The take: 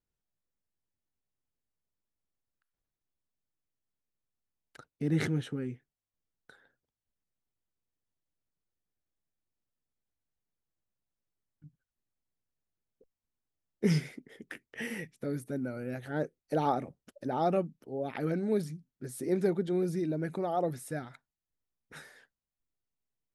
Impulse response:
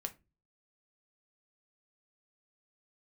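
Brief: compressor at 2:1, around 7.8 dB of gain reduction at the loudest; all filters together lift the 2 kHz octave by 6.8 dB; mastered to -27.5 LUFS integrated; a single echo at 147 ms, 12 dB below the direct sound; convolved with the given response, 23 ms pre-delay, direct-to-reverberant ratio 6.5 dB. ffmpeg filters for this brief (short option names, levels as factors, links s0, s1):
-filter_complex "[0:a]equalizer=f=2000:t=o:g=8,acompressor=threshold=0.0141:ratio=2,aecho=1:1:147:0.251,asplit=2[s0][s1];[1:a]atrim=start_sample=2205,adelay=23[s2];[s1][s2]afir=irnorm=-1:irlink=0,volume=0.562[s3];[s0][s3]amix=inputs=2:normalize=0,volume=3.35"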